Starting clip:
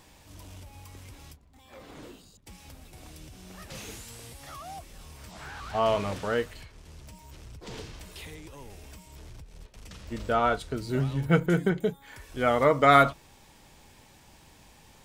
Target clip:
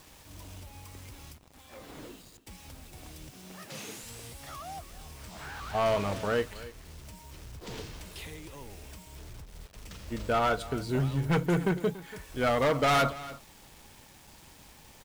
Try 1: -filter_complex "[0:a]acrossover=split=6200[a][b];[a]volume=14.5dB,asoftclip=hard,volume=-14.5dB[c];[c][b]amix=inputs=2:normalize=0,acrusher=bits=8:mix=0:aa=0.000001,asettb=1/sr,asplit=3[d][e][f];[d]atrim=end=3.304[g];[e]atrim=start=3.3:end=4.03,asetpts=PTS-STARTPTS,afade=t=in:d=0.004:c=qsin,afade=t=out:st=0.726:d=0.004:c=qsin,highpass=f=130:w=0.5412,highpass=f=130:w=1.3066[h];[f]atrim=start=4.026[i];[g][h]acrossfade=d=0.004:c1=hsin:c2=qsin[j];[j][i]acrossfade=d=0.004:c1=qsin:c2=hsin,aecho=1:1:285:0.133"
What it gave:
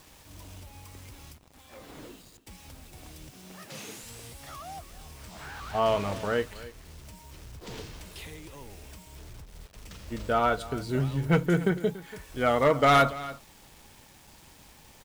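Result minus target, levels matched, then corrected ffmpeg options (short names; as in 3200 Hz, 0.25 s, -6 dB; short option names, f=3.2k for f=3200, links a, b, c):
overloaded stage: distortion -7 dB
-filter_complex "[0:a]acrossover=split=6200[a][b];[a]volume=21.5dB,asoftclip=hard,volume=-21.5dB[c];[c][b]amix=inputs=2:normalize=0,acrusher=bits=8:mix=0:aa=0.000001,asettb=1/sr,asplit=3[d][e][f];[d]atrim=end=3.304[g];[e]atrim=start=3.3:end=4.03,asetpts=PTS-STARTPTS,afade=t=in:d=0.004:c=qsin,afade=t=out:st=0.726:d=0.004:c=qsin,highpass=f=130:w=0.5412,highpass=f=130:w=1.3066[h];[f]atrim=start=4.026[i];[g][h]acrossfade=d=0.004:c1=hsin:c2=qsin[j];[j][i]acrossfade=d=0.004:c1=qsin:c2=hsin,aecho=1:1:285:0.133"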